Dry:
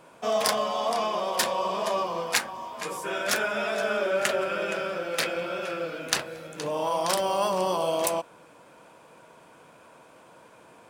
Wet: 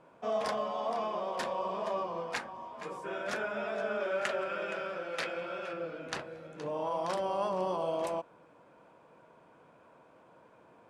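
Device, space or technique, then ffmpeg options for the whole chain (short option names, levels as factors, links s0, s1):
through cloth: -filter_complex "[0:a]asettb=1/sr,asplit=3[s0][s1][s2];[s0]atrim=end=4.004[s3];[s1]atrim=start=4:end=5.73,asetpts=PTS-STARTPTS,afade=t=in:d=0.004:c=qsin,afade=t=out:st=1.726:d=0.004:c=qsin,tiltshelf=f=690:g=-4.5[s4];[s2]atrim=start=5.726[s5];[s3][s4]acrossfade=d=0.004:c1=hsin:c2=qsin[s6];[s6][s5]acrossfade=d=0.004:c1=qsin:c2=hsin,lowpass=9000,highshelf=f=2800:g=-14.5,volume=0.531"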